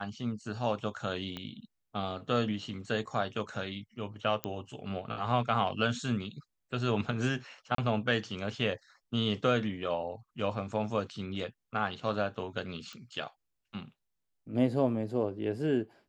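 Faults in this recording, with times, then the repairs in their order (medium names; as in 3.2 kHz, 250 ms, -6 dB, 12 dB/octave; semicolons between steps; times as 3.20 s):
1.37 s: pop -24 dBFS
4.44 s: pop -15 dBFS
7.75–7.78 s: dropout 33 ms
12.93 s: pop -30 dBFS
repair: de-click; interpolate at 7.75 s, 33 ms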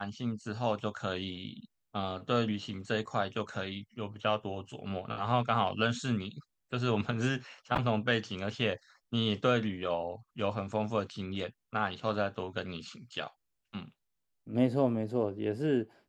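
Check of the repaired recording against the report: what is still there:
1.37 s: pop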